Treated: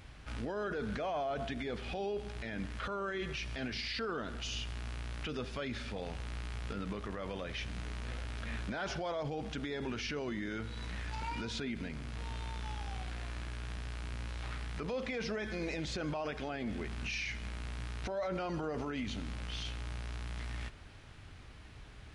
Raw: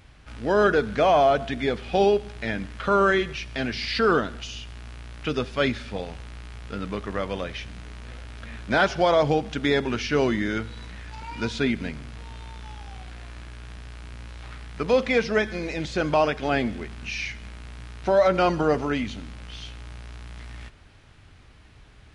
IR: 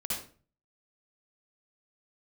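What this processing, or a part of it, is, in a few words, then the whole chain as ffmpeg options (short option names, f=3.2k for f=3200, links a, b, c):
stacked limiters: -af "alimiter=limit=-15.5dB:level=0:latency=1:release=30,alimiter=limit=-22dB:level=0:latency=1:release=358,alimiter=level_in=4.5dB:limit=-24dB:level=0:latency=1:release=28,volume=-4.5dB,volume=-1dB"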